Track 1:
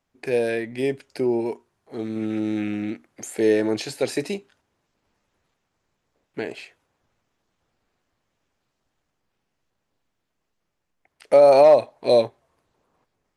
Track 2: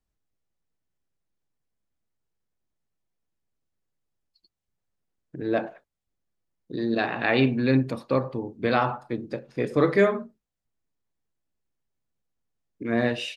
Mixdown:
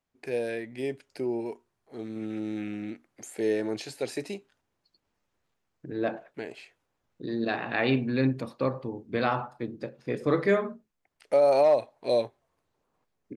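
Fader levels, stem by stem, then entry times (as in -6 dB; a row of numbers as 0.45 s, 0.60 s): -8.0 dB, -4.0 dB; 0.00 s, 0.50 s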